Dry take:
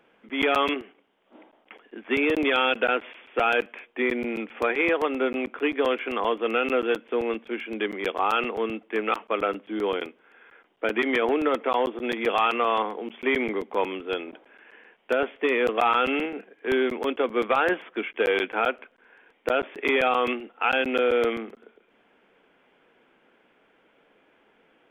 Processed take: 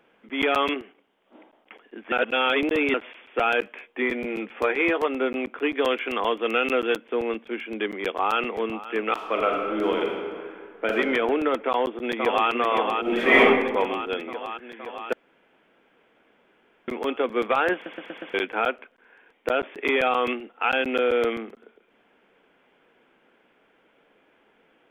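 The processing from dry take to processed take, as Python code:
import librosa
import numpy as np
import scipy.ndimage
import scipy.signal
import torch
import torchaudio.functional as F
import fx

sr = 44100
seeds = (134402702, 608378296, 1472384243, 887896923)

y = fx.doubler(x, sr, ms=15.0, db=-8.5, at=(3.6, 5.08))
y = fx.high_shelf(y, sr, hz=3200.0, db=8.0, at=(5.74, 6.95), fade=0.02)
y = fx.echo_throw(y, sr, start_s=7.87, length_s=0.74, ms=530, feedback_pct=25, wet_db=-15.0)
y = fx.reverb_throw(y, sr, start_s=9.13, length_s=1.81, rt60_s=2.0, drr_db=0.0)
y = fx.echo_throw(y, sr, start_s=11.67, length_s=0.82, ms=520, feedback_pct=75, wet_db=-4.5)
y = fx.reverb_throw(y, sr, start_s=13.01, length_s=0.4, rt60_s=1.1, drr_db=-9.5)
y = fx.edit(y, sr, fx.reverse_span(start_s=2.12, length_s=0.82),
    fx.room_tone_fill(start_s=15.13, length_s=1.75),
    fx.stutter_over(start_s=17.74, slice_s=0.12, count=5), tone=tone)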